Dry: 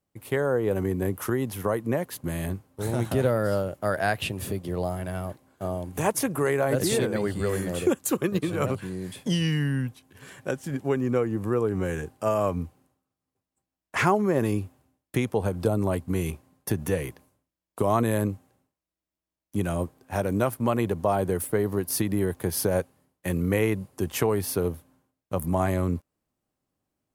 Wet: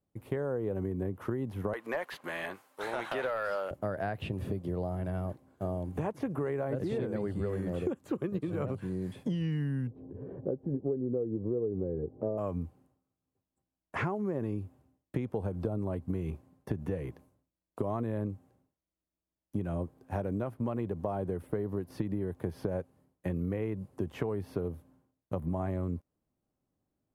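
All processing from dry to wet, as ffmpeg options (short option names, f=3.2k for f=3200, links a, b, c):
-filter_complex "[0:a]asettb=1/sr,asplit=3[a][b][c];[a]atrim=end=1.734[d];[b]atrim=start=1.73:end=3.71,asetpts=PTS-STARTPTS,afade=t=in:d=0.004:c=qsin,afade=t=out:st=1.976:d=0.004:c=qsin,highpass=1.3k,aeval=exprs='0.15*sin(PI/2*3.55*val(0)/0.15)':c=same[e];[c]atrim=start=3.706[f];[d][e]acrossfade=d=0.004:c1=hsin:c2=qsin[g];[g][f]acrossfade=d=0.004:c1=qsin:c2=hsin,asettb=1/sr,asplit=3[h][i][j];[h]atrim=end=9.874[k];[i]atrim=start=9.87:end=12.38,asetpts=PTS-STARTPTS,afade=t=in:d=0.004:c=qsin,afade=t=out:st=2.506:d=0.004:c=qsin,lowpass=f=460:t=q:w=2.2,acompressor=mode=upward:threshold=-33dB:ratio=2.5:attack=3.2:release=140:knee=2.83:detection=peak[l];[j]atrim=start=12.376[m];[k][l]acrossfade=d=0.004:c1=hsin:c2=qsin[n];[n][m]acrossfade=d=0.004:c1=qsin:c2=hsin,acrossover=split=3800[o][p];[p]acompressor=threshold=-50dB:ratio=4:attack=1:release=60[q];[o][q]amix=inputs=2:normalize=0,tiltshelf=f=1.1k:g=6,acompressor=threshold=-24dB:ratio=6,volume=-5.5dB"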